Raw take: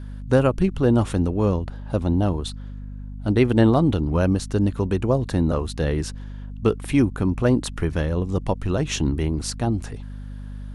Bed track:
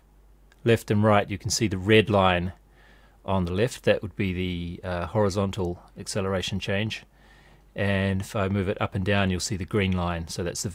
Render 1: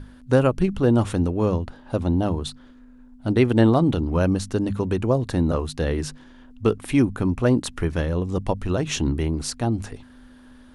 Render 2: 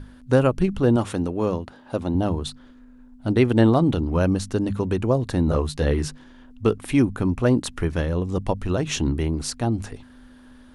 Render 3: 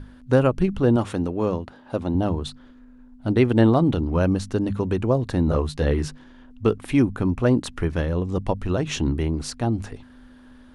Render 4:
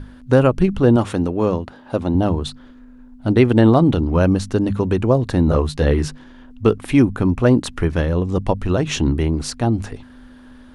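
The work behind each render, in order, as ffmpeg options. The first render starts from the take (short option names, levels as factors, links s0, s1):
-af "bandreject=f=50:t=h:w=6,bandreject=f=100:t=h:w=6,bandreject=f=150:t=h:w=6,bandreject=f=200:t=h:w=6"
-filter_complex "[0:a]asettb=1/sr,asplit=3[s0][s1][s2];[s0]atrim=end=0.964[s3];[s1]atrim=start=0.96:end=2.15,asetpts=PTS-STARTPTS,afade=t=in:d=0.004:c=qsin,afade=t=out:st=1.186:d=0.004:c=qsin,highpass=f=190:p=1[s4];[s2]atrim=start=2.146[s5];[s3][s4]acrossfade=d=0.004:c1=hsin:c2=qsin[s6];[s6][s5]acrossfade=d=0.004:c1=qsin:c2=hsin,asettb=1/sr,asplit=3[s7][s8][s9];[s7]atrim=end=5.464[s10];[s8]atrim=start=5.46:end=6.08,asetpts=PTS-STARTPTS,afade=t=in:d=0.004:c=qsin,afade=t=out:st=0.616:d=0.004:c=qsin,asplit=2[s11][s12];[s12]adelay=14,volume=0.531[s13];[s11][s13]amix=inputs=2:normalize=0,atrim=end_sample=27342[s14];[s9]atrim=start=6.076[s15];[s10][s14]acrossfade=d=0.004:c1=hsin:c2=qsin[s16];[s16][s15]acrossfade=d=0.004:c1=qsin:c2=hsin"
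-af "highshelf=f=6400:g=-7.5"
-af "volume=1.78,alimiter=limit=0.794:level=0:latency=1"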